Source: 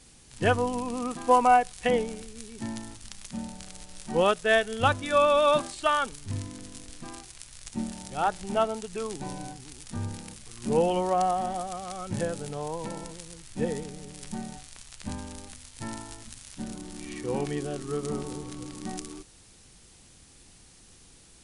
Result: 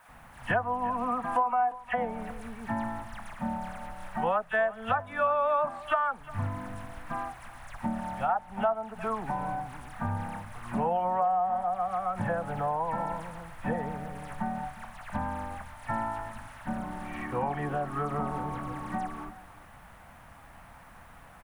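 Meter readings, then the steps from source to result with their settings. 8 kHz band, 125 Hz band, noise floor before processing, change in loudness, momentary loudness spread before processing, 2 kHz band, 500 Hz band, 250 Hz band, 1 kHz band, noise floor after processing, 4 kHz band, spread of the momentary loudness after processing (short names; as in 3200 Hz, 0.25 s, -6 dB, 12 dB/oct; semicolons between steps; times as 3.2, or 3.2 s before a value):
under -15 dB, -1.0 dB, -55 dBFS, -3.5 dB, 20 LU, -2.5 dB, -5.0 dB, -3.0 dB, -0.5 dB, -52 dBFS, under -10 dB, 14 LU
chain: dispersion lows, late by 86 ms, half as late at 2900 Hz; in parallel at -7 dB: requantised 8-bit, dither triangular; on the sum: EQ curve 230 Hz 0 dB, 390 Hz -10 dB, 720 Hz +13 dB, 1700 Hz +7 dB, 4600 Hz -19 dB, 7200 Hz -20 dB, 11000 Hz -13 dB; compressor 4:1, threshold -27 dBFS, peak gain reduction 21.5 dB; notch 770 Hz, Q 20; on a send: echo 0.355 s -18.5 dB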